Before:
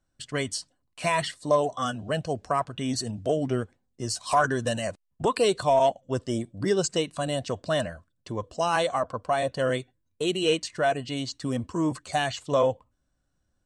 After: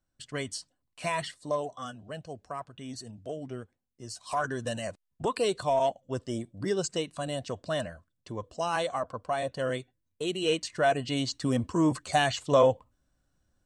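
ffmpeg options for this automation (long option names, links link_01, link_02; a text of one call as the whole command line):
ffmpeg -i in.wav -af "volume=8dB,afade=type=out:start_time=1.1:duration=0.9:silence=0.473151,afade=type=in:start_time=4.02:duration=0.78:silence=0.446684,afade=type=in:start_time=10.36:duration=0.81:silence=0.473151" out.wav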